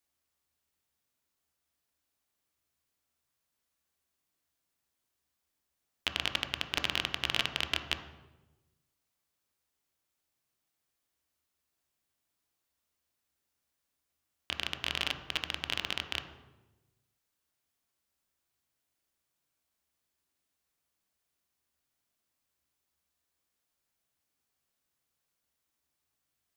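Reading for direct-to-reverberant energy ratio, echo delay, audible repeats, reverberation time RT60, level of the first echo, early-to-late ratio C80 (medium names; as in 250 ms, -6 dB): 6.0 dB, no echo, no echo, 1.1 s, no echo, 11.0 dB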